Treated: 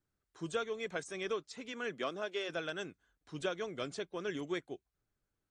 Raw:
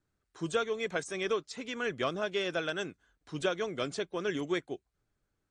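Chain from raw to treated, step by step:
0:01.72–0:02.48: high-pass filter 110 Hz → 320 Hz 24 dB per octave
level −5.5 dB

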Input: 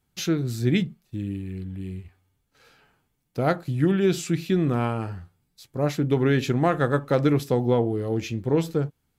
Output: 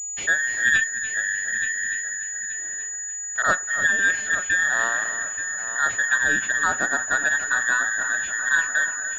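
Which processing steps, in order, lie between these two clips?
frequency inversion band by band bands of 2,000 Hz
0:03.42–0:03.88: all-pass dispersion highs, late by 40 ms, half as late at 1,700 Hz
on a send: echo machine with several playback heads 293 ms, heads first and third, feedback 48%, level −11.5 dB
on the sum: speech leveller within 4 dB 2 s
switching amplifier with a slow clock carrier 6,900 Hz

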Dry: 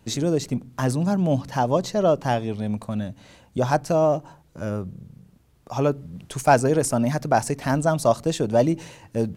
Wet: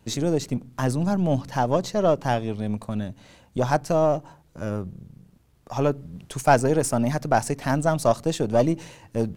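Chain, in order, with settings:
gain on one half-wave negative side −3 dB

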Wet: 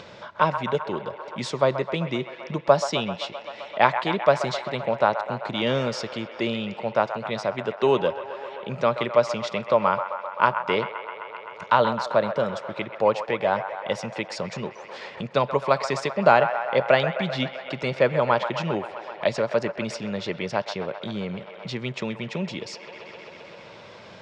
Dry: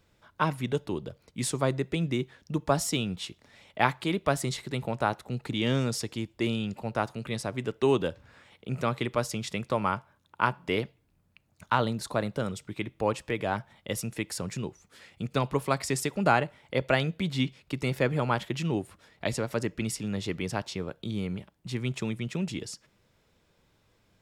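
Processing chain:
loudspeaker in its box 170–5,500 Hz, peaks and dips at 290 Hz −8 dB, 580 Hz +8 dB, 980 Hz +4 dB
delay with a band-pass on its return 130 ms, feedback 73%, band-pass 1,200 Hz, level −8.5 dB
upward compression, threshold −32 dBFS
level +4 dB

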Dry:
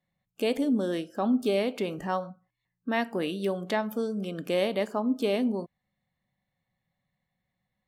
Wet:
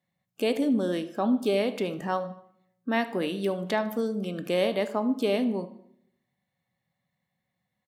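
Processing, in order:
high-pass filter 100 Hz
repeating echo 76 ms, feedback 46%, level −20.5 dB
on a send at −13 dB: convolution reverb RT60 0.75 s, pre-delay 19 ms
on the sum: level +1 dB

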